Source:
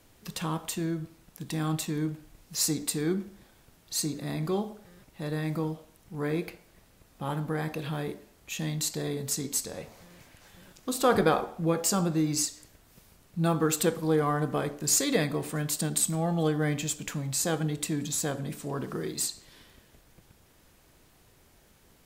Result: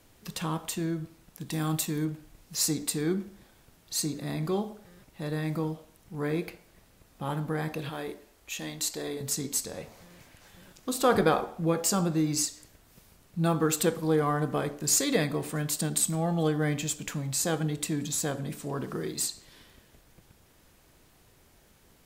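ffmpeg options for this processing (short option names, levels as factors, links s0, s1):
-filter_complex "[0:a]asettb=1/sr,asplit=3[s0][s1][s2];[s0]atrim=end=1.524[s3];[s1]atrim=start=1.52:end=2.05,asetpts=PTS-STARTPTS,afade=t=in:d=0.004:c=qsin,afade=t=out:st=0.526:d=0.004:c=qsin,highshelf=f=8700:g=10[s4];[s2]atrim=start=2.046[s5];[s3][s4]acrossfade=d=0.004:c1=hsin:c2=qsin[s6];[s6][s5]acrossfade=d=0.004:c1=qsin:c2=hsin,asettb=1/sr,asplit=3[s7][s8][s9];[s7]atrim=end=7.894[s10];[s8]atrim=start=7.89:end=9.21,asetpts=PTS-STARTPTS,afade=t=in:d=0.004:c=qsin,afade=t=out:st=1.316:d=0.004:c=qsin,equalizer=f=150:w=1.4:g=-12.5[s11];[s9]atrim=start=9.206[s12];[s10][s11]acrossfade=d=0.004:c1=hsin:c2=qsin[s13];[s13][s12]acrossfade=d=0.004:c1=qsin:c2=hsin"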